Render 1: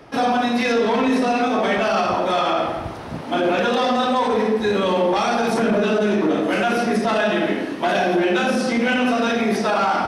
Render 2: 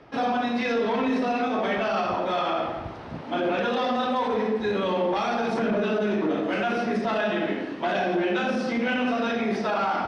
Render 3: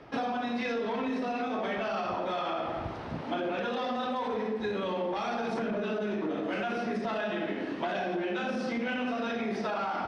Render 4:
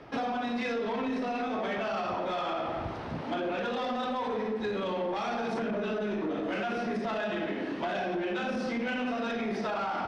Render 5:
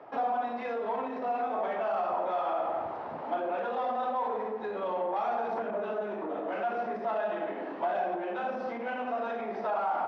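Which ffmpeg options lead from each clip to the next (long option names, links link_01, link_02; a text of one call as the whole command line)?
ffmpeg -i in.wav -af "lowpass=4400,volume=-6dB" out.wav
ffmpeg -i in.wav -af "acompressor=threshold=-29dB:ratio=6" out.wav
ffmpeg -i in.wav -af "asoftclip=type=tanh:threshold=-25.5dB,volume=1.5dB" out.wav
ffmpeg -i in.wav -af "bandpass=frequency=780:width_type=q:width=1.6:csg=0,volume=4.5dB" out.wav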